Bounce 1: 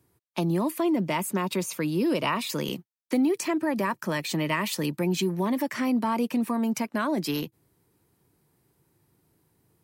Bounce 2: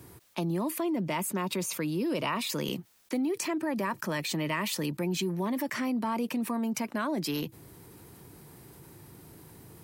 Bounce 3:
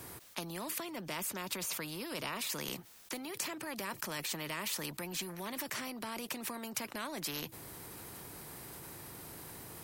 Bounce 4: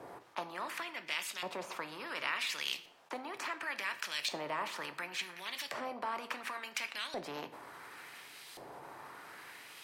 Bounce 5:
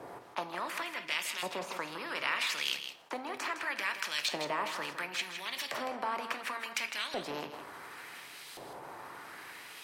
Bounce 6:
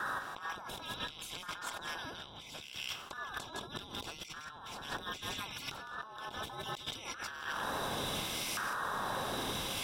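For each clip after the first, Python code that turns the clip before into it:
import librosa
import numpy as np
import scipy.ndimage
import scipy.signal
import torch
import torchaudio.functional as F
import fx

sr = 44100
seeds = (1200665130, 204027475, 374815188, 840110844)

y1 = fx.env_flatten(x, sr, amount_pct=50)
y1 = F.gain(torch.from_numpy(y1), -7.0).numpy()
y2 = fx.spectral_comp(y1, sr, ratio=2.0)
y2 = F.gain(torch.from_numpy(y2), -2.0).numpy()
y3 = fx.filter_lfo_bandpass(y2, sr, shape='saw_up', hz=0.7, low_hz=600.0, high_hz=3800.0, q=1.5)
y3 = fx.room_shoebox(y3, sr, seeds[0], volume_m3=130.0, walls='mixed', distance_m=0.31)
y3 = F.gain(torch.from_numpy(y3), 8.0).numpy()
y4 = y3 + 10.0 ** (-9.0 / 20.0) * np.pad(y3, (int(160 * sr / 1000.0), 0))[:len(y3)]
y4 = F.gain(torch.from_numpy(y4), 3.0).numpy()
y5 = fx.band_invert(y4, sr, width_hz=2000)
y5 = fx.over_compress(y5, sr, threshold_db=-47.0, ratio=-1.0)
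y5 = F.gain(torch.from_numpy(y5), 4.0).numpy()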